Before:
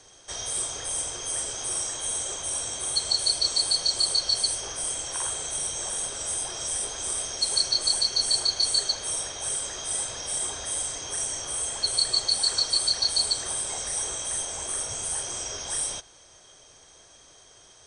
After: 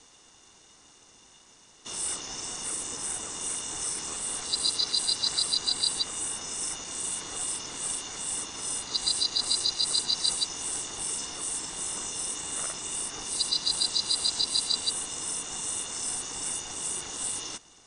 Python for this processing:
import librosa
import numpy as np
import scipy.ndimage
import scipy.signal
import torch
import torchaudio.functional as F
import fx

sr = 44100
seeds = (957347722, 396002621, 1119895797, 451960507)

y = x[::-1].copy()
y = y * np.sin(2.0 * np.pi * 370.0 * np.arange(len(y)) / sr)